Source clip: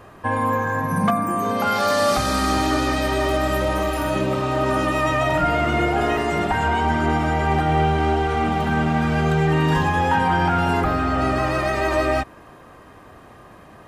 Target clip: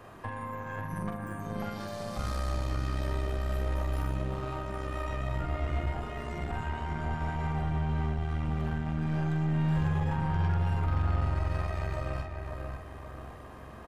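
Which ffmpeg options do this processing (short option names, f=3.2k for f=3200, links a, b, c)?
-filter_complex "[0:a]acrossover=split=130[a][b];[b]acompressor=threshold=-33dB:ratio=12[c];[a][c]amix=inputs=2:normalize=0,asplit=2[d][e];[e]adelay=44,volume=-4.5dB[f];[d][f]amix=inputs=2:normalize=0,asplit=2[g][h];[h]adelay=539,lowpass=f=2.2k:p=1,volume=-4dB,asplit=2[i][j];[j]adelay=539,lowpass=f=2.2k:p=1,volume=0.47,asplit=2[k][l];[l]adelay=539,lowpass=f=2.2k:p=1,volume=0.47,asplit=2[m][n];[n]adelay=539,lowpass=f=2.2k:p=1,volume=0.47,asplit=2[o][p];[p]adelay=539,lowpass=f=2.2k:p=1,volume=0.47,asplit=2[q][r];[r]adelay=539,lowpass=f=2.2k:p=1,volume=0.47[s];[g][i][k][m][o][q][s]amix=inputs=7:normalize=0,aeval=exprs='0.2*(cos(1*acos(clip(val(0)/0.2,-1,1)))-cos(1*PI/2))+0.0178*(cos(6*acos(clip(val(0)/0.2,-1,1)))-cos(6*PI/2))':c=same,volume=-6dB"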